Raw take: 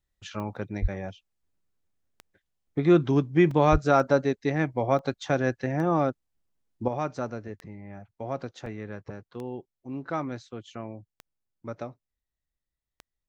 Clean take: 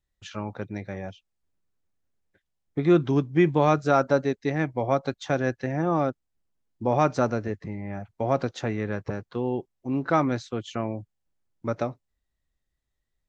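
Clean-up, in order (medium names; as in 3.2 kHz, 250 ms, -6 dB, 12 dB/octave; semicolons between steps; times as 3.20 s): de-click; de-plosive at 0.81/3.71 s; interpolate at 0.56/2.67/3.51/4.99/8.66 s, 3.2 ms; trim 0 dB, from 6.88 s +8.5 dB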